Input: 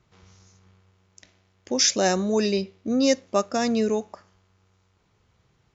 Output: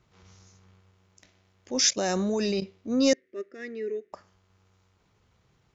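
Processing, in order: 1.89–2.62 level quantiser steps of 13 dB; transient shaper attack -8 dB, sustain -3 dB; 3.13–4.13 double band-pass 860 Hz, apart 2.3 oct

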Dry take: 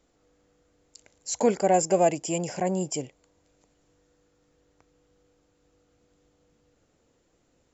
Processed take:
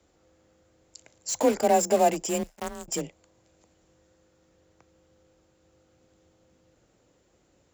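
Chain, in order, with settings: in parallel at -9.5 dB: wrapped overs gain 26 dB; 2.43–2.88 on the sum: power-law curve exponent 3; frequency shift +28 Hz

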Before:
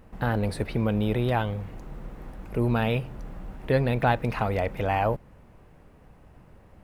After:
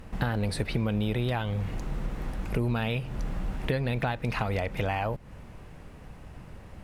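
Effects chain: bell 6400 Hz +11 dB 2.9 oct; compressor 6:1, threshold -31 dBFS, peak gain reduction 14.5 dB; tone controls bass +4 dB, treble -4 dB; gain +3.5 dB

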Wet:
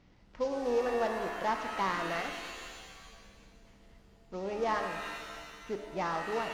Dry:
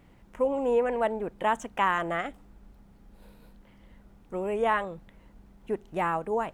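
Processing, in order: CVSD 32 kbps; shimmer reverb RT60 1.7 s, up +7 st, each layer -2 dB, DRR 6 dB; gain -6 dB

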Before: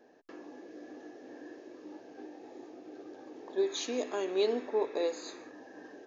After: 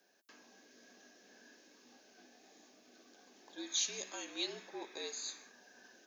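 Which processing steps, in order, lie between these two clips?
differentiator; frequency shift -59 Hz; gain +7.5 dB

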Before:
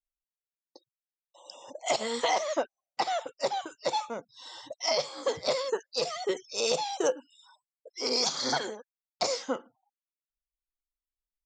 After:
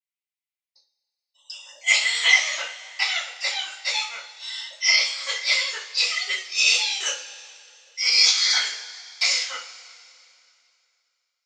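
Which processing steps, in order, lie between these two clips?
gate -49 dBFS, range -11 dB; resonant high-pass 2200 Hz, resonance Q 2.4; two-slope reverb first 0.33 s, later 2.6 s, from -20 dB, DRR -9.5 dB

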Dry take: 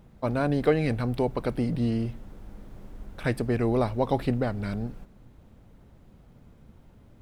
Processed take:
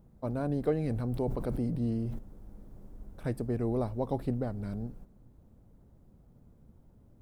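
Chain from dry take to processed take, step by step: bell 2600 Hz -13 dB 2.4 oct; 0.89–2.19 sustainer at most 26 dB/s; gain -5 dB

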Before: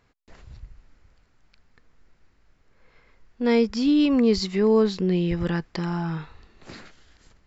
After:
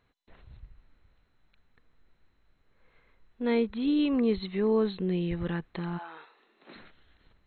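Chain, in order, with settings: 5.97–6.74 HPF 530 Hz -> 200 Hz 24 dB/oct; gain -6.5 dB; MP2 32 kbps 16000 Hz

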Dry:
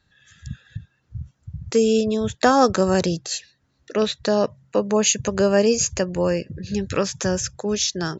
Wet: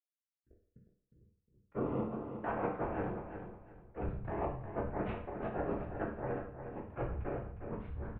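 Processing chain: power-law curve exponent 3; in parallel at -12 dB: backlash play -21 dBFS; on the sum: Bessel low-pass 1200 Hz, order 8; reverse; compressor 10:1, threshold -43 dBFS, peak gain reduction 24 dB; reverse; whisperiser; feedback echo 0.359 s, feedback 25%, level -8.5 dB; reverb RT60 0.55 s, pre-delay 10 ms, DRR -2 dB; gain +7.5 dB

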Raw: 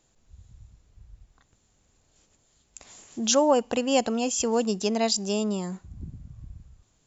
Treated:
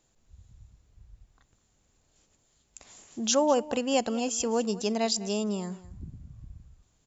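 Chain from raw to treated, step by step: echo 0.204 s -18 dB; gain -3 dB

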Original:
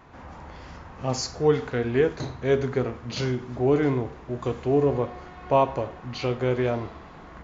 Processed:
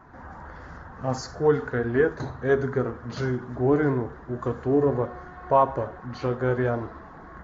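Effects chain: bin magnitudes rounded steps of 15 dB; resonant high shelf 2000 Hz -6.5 dB, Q 3

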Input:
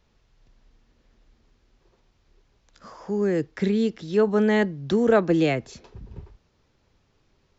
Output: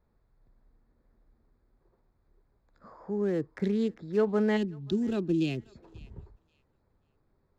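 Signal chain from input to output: Wiener smoothing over 15 samples; spectral gain 4.57–5.75, 430–2400 Hz -15 dB; thinning echo 0.536 s, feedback 24%, high-pass 1100 Hz, level -21 dB; gain -5.5 dB

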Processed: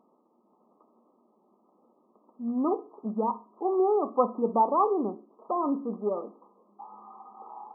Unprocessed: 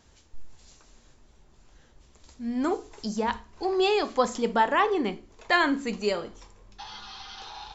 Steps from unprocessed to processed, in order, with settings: rattling part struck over -33 dBFS, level -29 dBFS; 4.93–7.01 tube stage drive 18 dB, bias 0.35; brick-wall FIR band-pass 180–1300 Hz

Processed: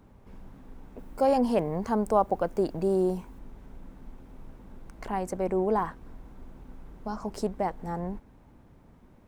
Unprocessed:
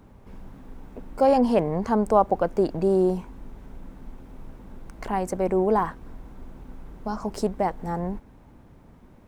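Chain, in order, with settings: 0.98–3.39 high shelf 8800 Hz +9 dB; gain -4.5 dB

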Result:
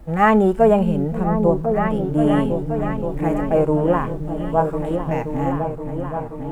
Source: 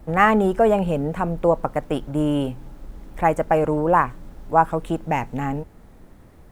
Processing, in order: harmonic-percussive split percussive -16 dB; repeats that get brighter 0.526 s, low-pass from 200 Hz, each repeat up 2 oct, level -3 dB; gain +3.5 dB

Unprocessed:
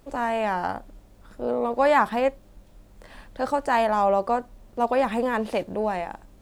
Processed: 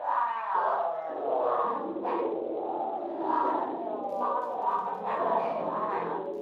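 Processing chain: spectral swells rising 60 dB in 1.04 s; 0.66–1.51 HPF 280 Hz 12 dB/oct; tilt +2.5 dB/oct; negative-ratio compressor -26 dBFS, ratio -0.5; 2.24–3.51 frequency shift +82 Hz; auto-wah 530–1100 Hz, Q 6.8, up, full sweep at -21.5 dBFS; 4.01–5.03 crackle 27/s -42 dBFS; plate-style reverb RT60 0.62 s, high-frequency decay 0.75×, DRR -2.5 dB; echoes that change speed 0.548 s, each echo -6 st, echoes 3; Speex 36 kbps 32000 Hz

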